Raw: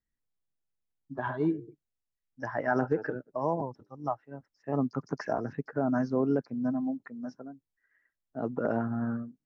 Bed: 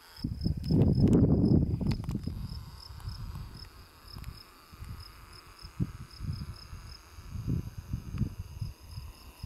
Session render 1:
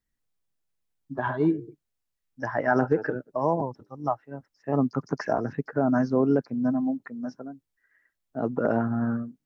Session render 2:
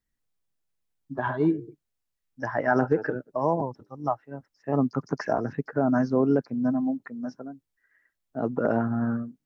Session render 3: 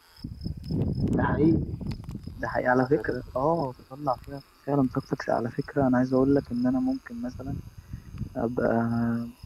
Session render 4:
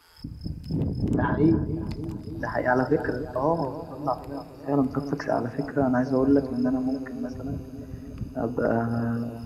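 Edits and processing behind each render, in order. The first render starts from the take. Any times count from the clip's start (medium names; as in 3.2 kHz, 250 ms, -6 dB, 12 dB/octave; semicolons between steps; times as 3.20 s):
trim +5 dB
no audible change
add bed -3 dB
filtered feedback delay 290 ms, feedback 79%, low-pass 1 kHz, level -13.5 dB; FDN reverb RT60 0.58 s, high-frequency decay 0.3×, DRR 12.5 dB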